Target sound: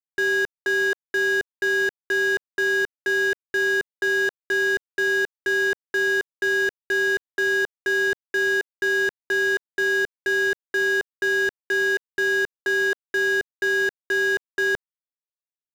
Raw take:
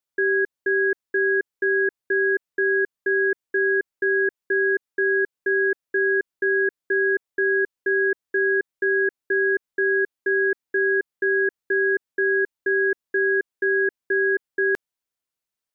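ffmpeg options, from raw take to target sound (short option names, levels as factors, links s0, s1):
-filter_complex "[0:a]acrusher=bits=5:mode=log:mix=0:aa=0.000001,asplit=2[s0][s1];[s1]highpass=f=720:p=1,volume=70.8,asoftclip=type=tanh:threshold=0.2[s2];[s0][s2]amix=inputs=2:normalize=0,lowpass=f=1400:p=1,volume=0.501,aeval=exprs='sgn(val(0))*max(abs(val(0))-0.00376,0)':c=same"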